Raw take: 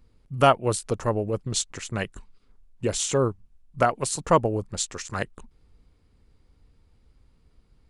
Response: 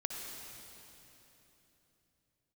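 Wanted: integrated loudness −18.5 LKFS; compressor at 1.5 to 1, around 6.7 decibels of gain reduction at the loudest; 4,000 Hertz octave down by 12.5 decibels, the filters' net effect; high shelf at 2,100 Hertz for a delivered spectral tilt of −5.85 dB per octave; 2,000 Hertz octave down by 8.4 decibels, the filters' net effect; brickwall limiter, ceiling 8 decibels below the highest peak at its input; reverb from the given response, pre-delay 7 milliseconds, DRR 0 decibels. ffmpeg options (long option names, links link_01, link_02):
-filter_complex "[0:a]equalizer=frequency=2000:width_type=o:gain=-6,highshelf=frequency=2100:gain=-8.5,equalizer=frequency=4000:width_type=o:gain=-6,acompressor=threshold=-33dB:ratio=1.5,alimiter=limit=-22dB:level=0:latency=1,asplit=2[link_01][link_02];[1:a]atrim=start_sample=2205,adelay=7[link_03];[link_02][link_03]afir=irnorm=-1:irlink=0,volume=-1.5dB[link_04];[link_01][link_04]amix=inputs=2:normalize=0,volume=14dB"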